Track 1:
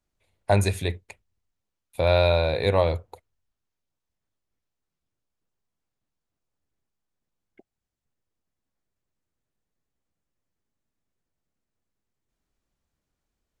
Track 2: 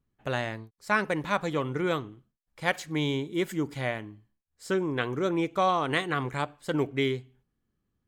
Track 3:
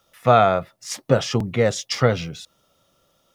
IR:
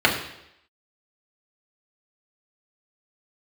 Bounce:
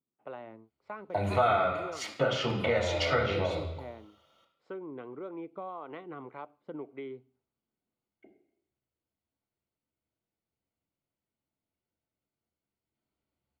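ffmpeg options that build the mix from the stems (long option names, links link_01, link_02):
-filter_complex "[0:a]acompressor=threshold=-21dB:ratio=6,adelay=650,volume=-14dB,asplit=2[link_01][link_02];[link_02]volume=-9dB[link_03];[1:a]lowpass=frequency=1300:poles=1,acrossover=split=420[link_04][link_05];[link_04]aeval=exprs='val(0)*(1-0.5/2+0.5/2*cos(2*PI*1.8*n/s))':channel_layout=same[link_06];[link_05]aeval=exprs='val(0)*(1-0.5/2-0.5/2*cos(2*PI*1.8*n/s))':channel_layout=same[link_07];[link_06][link_07]amix=inputs=2:normalize=0,volume=-5dB[link_08];[2:a]equalizer=frequency=1800:width_type=o:width=2.5:gain=14,adelay=1100,volume=-19dB,asplit=2[link_09][link_10];[link_10]volume=-10.5dB[link_11];[link_01][link_08]amix=inputs=2:normalize=0,highpass=270,lowpass=2200,acompressor=threshold=-38dB:ratio=3,volume=0dB[link_12];[3:a]atrim=start_sample=2205[link_13];[link_03][link_11]amix=inputs=2:normalize=0[link_14];[link_14][link_13]afir=irnorm=-1:irlink=0[link_15];[link_09][link_12][link_15]amix=inputs=3:normalize=0,equalizer=frequency=1700:width=6.2:gain=-13.5,acompressor=threshold=-26dB:ratio=2.5"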